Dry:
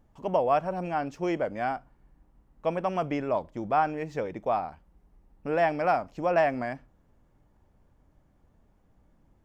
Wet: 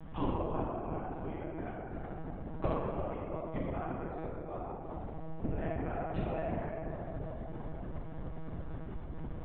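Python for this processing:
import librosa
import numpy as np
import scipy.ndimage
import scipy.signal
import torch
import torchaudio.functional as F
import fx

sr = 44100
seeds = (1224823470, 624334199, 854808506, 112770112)

y = fx.gate_flip(x, sr, shuts_db=-33.0, range_db=-34)
y = fx.doubler(y, sr, ms=48.0, db=-4.5)
y = fx.echo_filtered(y, sr, ms=343, feedback_pct=82, hz=1000.0, wet_db=-6.0)
y = fx.rev_plate(y, sr, seeds[0], rt60_s=2.1, hf_ratio=0.5, predelay_ms=0, drr_db=-4.5)
y = fx.lpc_monotone(y, sr, seeds[1], pitch_hz=160.0, order=16)
y = y * librosa.db_to_amplitude(11.5)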